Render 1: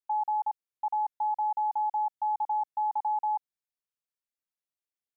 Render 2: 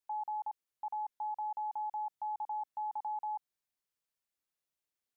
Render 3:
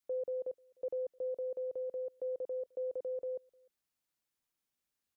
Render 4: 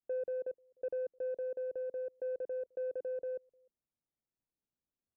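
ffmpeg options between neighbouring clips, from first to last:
ffmpeg -i in.wav -af "alimiter=level_in=12dB:limit=-24dB:level=0:latency=1:release=24,volume=-12dB,volume=2.5dB" out.wav
ffmpeg -i in.wav -filter_complex "[0:a]adynamicequalizer=threshold=0.00447:dfrequency=830:dqfactor=2.4:tfrequency=830:tqfactor=2.4:attack=5:release=100:ratio=0.375:range=2:mode=cutabove:tftype=bell,afreqshift=-340,asplit=2[link_01][link_02];[link_02]adelay=303.2,volume=-28dB,highshelf=frequency=4000:gain=-6.82[link_03];[link_01][link_03]amix=inputs=2:normalize=0,volume=2dB" out.wav
ffmpeg -i in.wav -af "adynamicsmooth=sensitivity=1.5:basefreq=730,volume=1.5dB" out.wav

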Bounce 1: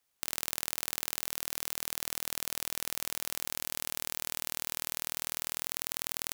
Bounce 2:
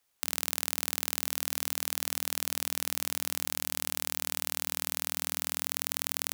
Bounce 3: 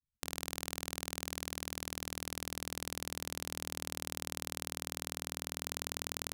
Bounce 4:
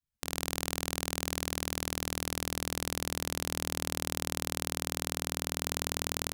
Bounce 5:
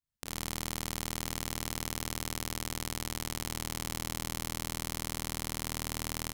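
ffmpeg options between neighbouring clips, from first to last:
ffmpeg -i in.wav -af "bandreject=frequency=89.15:width_type=h:width=4,bandreject=frequency=178.3:width_type=h:width=4,bandreject=frequency=267.45:width_type=h:width=4,volume=3dB" out.wav
ffmpeg -i in.wav -af "lowshelf=frequency=370:gain=6,adynamicsmooth=sensitivity=7.5:basefreq=560,afftfilt=real='re*gte(hypot(re,im),0.000224)':imag='im*gte(hypot(re,im),0.000224)':win_size=1024:overlap=0.75" out.wav
ffmpeg -i in.wav -af "dynaudnorm=framelen=180:gausssize=3:maxgain=11.5dB,asoftclip=type=tanh:threshold=-6.5dB" out.wav
ffmpeg -i in.wav -af "aecho=1:1:34.99|75.8:0.316|0.708,volume=-4.5dB" out.wav

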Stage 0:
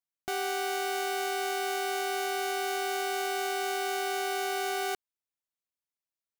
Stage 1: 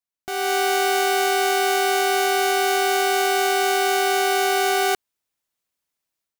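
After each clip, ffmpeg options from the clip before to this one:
ffmpeg -i in.wav -af "dynaudnorm=framelen=270:gausssize=3:maxgain=11.5dB" out.wav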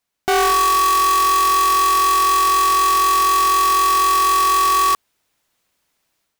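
ffmpeg -i in.wav -af "highshelf=frequency=5600:gain=-6,aeval=exprs='0.251*sin(PI/2*3.98*val(0)/0.251)':channel_layout=same" out.wav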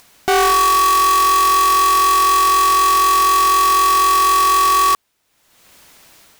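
ffmpeg -i in.wav -af "acompressor=mode=upward:threshold=-31dB:ratio=2.5,volume=2dB" out.wav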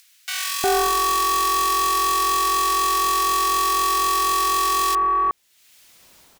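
ffmpeg -i in.wav -filter_complex "[0:a]acrossover=split=1700[link_01][link_02];[link_01]adelay=360[link_03];[link_03][link_02]amix=inputs=2:normalize=0,volume=-4dB" out.wav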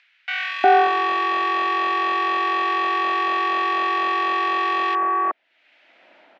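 ffmpeg -i in.wav -af "highpass=frequency=290:width=0.5412,highpass=frequency=290:width=1.3066,equalizer=frequency=430:width_type=q:width=4:gain=-10,equalizer=frequency=640:width_type=q:width=4:gain=6,equalizer=frequency=1100:width_type=q:width=4:gain=-10,lowpass=frequency=2500:width=0.5412,lowpass=frequency=2500:width=1.3066,volume=7.5dB" out.wav

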